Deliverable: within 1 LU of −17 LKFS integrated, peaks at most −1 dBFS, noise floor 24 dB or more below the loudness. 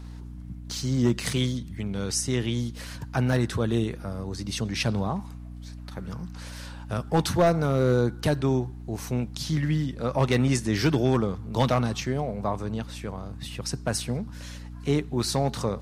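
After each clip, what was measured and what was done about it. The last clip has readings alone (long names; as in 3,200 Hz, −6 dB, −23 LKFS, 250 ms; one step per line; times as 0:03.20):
share of clipped samples 0.4%; peaks flattened at −14.0 dBFS; mains hum 60 Hz; hum harmonics up to 300 Hz; level of the hum −38 dBFS; integrated loudness −27.0 LKFS; sample peak −14.0 dBFS; target loudness −17.0 LKFS
→ clipped peaks rebuilt −14 dBFS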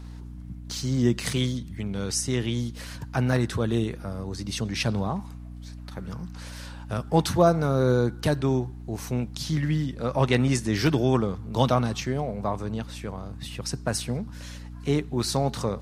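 share of clipped samples 0.0%; mains hum 60 Hz; hum harmonics up to 300 Hz; level of the hum −38 dBFS
→ hum removal 60 Hz, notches 5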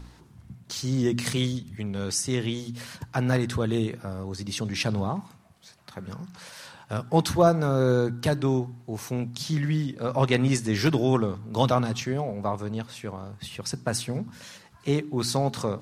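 mains hum none found; integrated loudness −27.0 LKFS; sample peak −6.5 dBFS; target loudness −17.0 LKFS
→ level +10 dB
brickwall limiter −1 dBFS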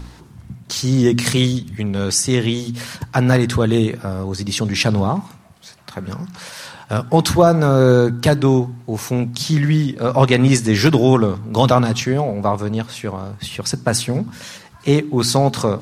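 integrated loudness −17.5 LKFS; sample peak −1.0 dBFS; background noise floor −43 dBFS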